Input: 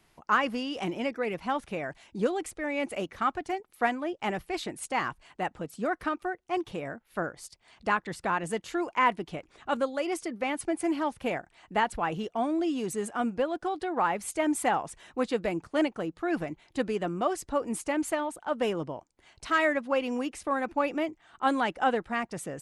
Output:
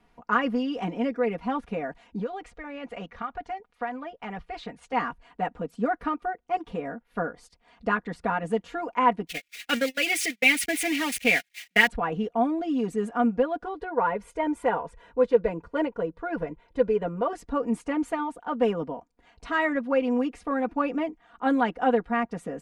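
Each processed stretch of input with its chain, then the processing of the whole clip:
2.19–4.93 LPF 6100 Hz + bell 300 Hz -9 dB 1.1 oct + compressor 4:1, threshold -32 dBFS
9.27–11.87 switching spikes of -25.5 dBFS + gate -34 dBFS, range -42 dB + resonant high shelf 1500 Hz +12 dB, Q 3
13.64–17.33 high shelf 2500 Hz -8 dB + comb 2 ms, depth 59%
whole clip: LPF 1300 Hz 6 dB/oct; comb 4.2 ms, depth 93%; gain +1.5 dB

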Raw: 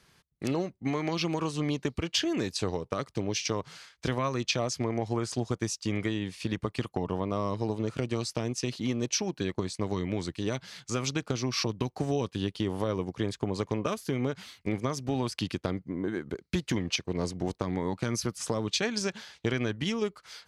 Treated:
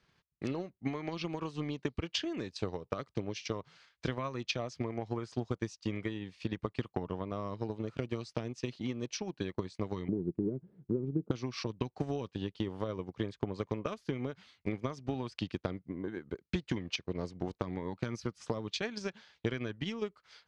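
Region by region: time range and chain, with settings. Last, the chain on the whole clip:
10.08–11.31 synth low-pass 370 Hz, resonance Q 4.6 + bell 170 Hz +11.5 dB 0.97 oct + compressor 2.5:1, threshold -24 dBFS
whole clip: LPF 4600 Hz 12 dB/oct; transient shaper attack +6 dB, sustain -3 dB; gain -8.5 dB

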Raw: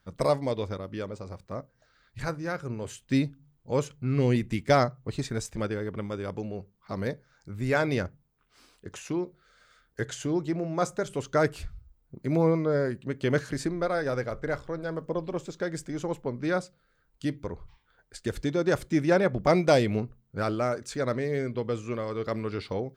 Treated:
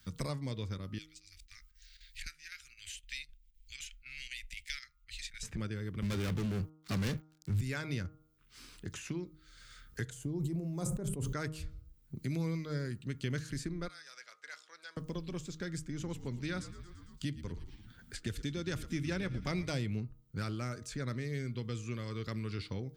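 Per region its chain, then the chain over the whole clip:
0.98–5.43 inverse Chebyshev band-stop 110–970 Hz, stop band 50 dB + chopper 3.9 Hz, depth 65%, duty 85%
6.02–7.61 sample leveller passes 5 + three-band expander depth 100%
10.1–11.33 band shelf 2900 Hz -15.5 dB 2.7 oct + sustainer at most 29 dB/s
13.88–14.97 BPF 620–6400 Hz + differentiator
15.88–19.69 dynamic EQ 3000 Hz, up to +5 dB, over -49 dBFS, Q 1.6 + frequency-shifting echo 0.113 s, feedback 58%, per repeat -66 Hz, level -17 dB
whole clip: passive tone stack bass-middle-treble 6-0-2; de-hum 155.9 Hz, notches 9; three-band squash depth 70%; gain +10.5 dB

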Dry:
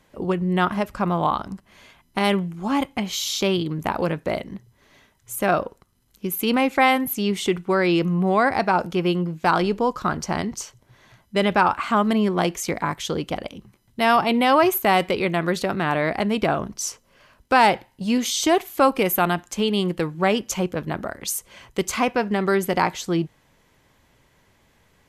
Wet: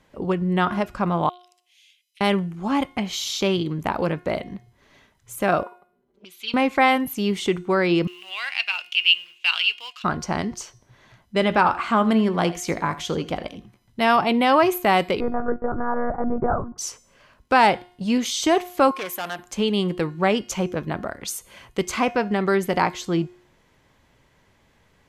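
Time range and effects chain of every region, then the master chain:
1.29–2.21 steep high-pass 2600 Hz + compressor, threshold -49 dBFS + notch 4400 Hz
5.63–6.54 G.711 law mismatch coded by mu + comb 5.1 ms, depth 98% + auto-wah 340–3600 Hz, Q 2.6, up, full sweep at -23 dBFS
8.07–10.04 G.711 law mismatch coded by A + resonant high-pass 2800 Hz, resonance Q 14
11.38–14.07 doubler 18 ms -14 dB + echo 81 ms -16 dB
15.2–16.78 steep low-pass 1500 Hz 48 dB/oct + monotone LPC vocoder at 8 kHz 240 Hz
18.91–19.39 hard clip -20 dBFS + HPF 1000 Hz 6 dB/oct + Doppler distortion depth 0.16 ms
whole clip: high shelf 10000 Hz -10.5 dB; de-hum 357.9 Hz, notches 38

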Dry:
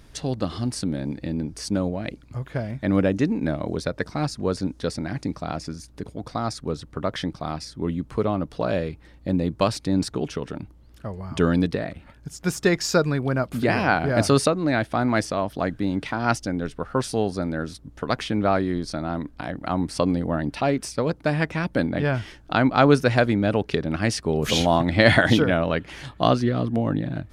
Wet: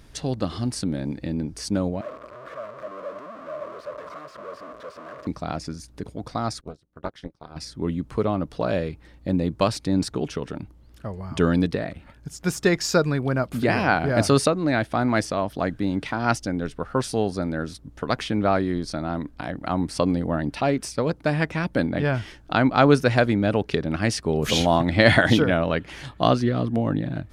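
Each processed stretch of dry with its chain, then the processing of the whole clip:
2.01–5.27 infinite clipping + double band-pass 820 Hz, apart 0.88 oct
6.61–7.56 high shelf 6100 Hz +3 dB + AM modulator 240 Hz, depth 90% + upward expander 2.5:1, over -41 dBFS
whole clip: dry

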